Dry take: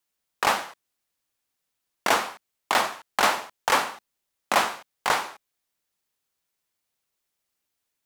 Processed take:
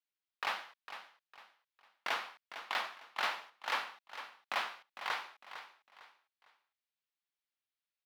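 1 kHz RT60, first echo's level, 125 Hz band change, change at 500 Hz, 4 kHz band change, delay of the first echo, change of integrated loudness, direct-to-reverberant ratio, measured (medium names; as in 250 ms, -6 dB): no reverb, -11.5 dB, under -20 dB, -18.5 dB, -11.5 dB, 454 ms, -14.5 dB, no reverb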